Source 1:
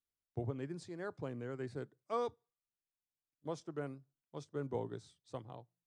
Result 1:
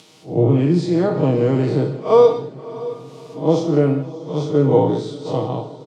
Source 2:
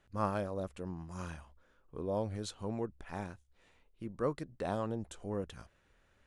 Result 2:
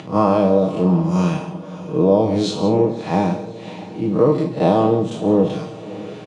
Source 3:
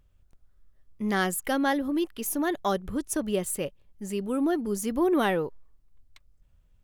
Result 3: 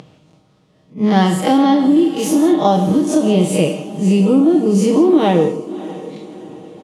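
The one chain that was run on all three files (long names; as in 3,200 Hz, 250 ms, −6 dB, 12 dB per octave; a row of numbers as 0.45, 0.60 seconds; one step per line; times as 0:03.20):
spectrum smeared in time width 100 ms
parametric band 1,600 Hz −13 dB 0.75 octaves
comb filter 6.4 ms, depth 59%
upward compression, threshold −51 dBFS
low-pass filter 4,500 Hz 12 dB per octave
downward compressor, threshold −36 dBFS
high-pass filter 130 Hz 24 dB per octave
feedback delay with all-pass diffusion 616 ms, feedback 47%, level −16 dB
reverb whose tail is shaped and stops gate 200 ms flat, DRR 8 dB
level that may rise only so fast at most 260 dB per second
normalise the peak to −2 dBFS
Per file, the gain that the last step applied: +28.5, +26.0, +25.0 decibels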